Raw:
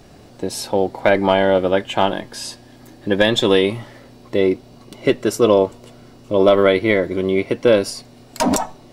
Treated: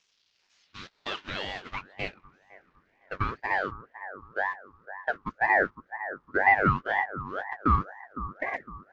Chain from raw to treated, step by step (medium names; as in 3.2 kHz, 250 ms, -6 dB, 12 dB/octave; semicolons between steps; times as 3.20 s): one-bit delta coder 32 kbps, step -23 dBFS; gate -16 dBFS, range -25 dB; band-pass sweep 4.4 kHz -> 630 Hz, 0.06–3.71 s; bucket-brigade echo 508 ms, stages 2048, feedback 42%, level -12 dB; ring modulator with a swept carrier 1 kHz, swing 40%, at 2 Hz; trim -3 dB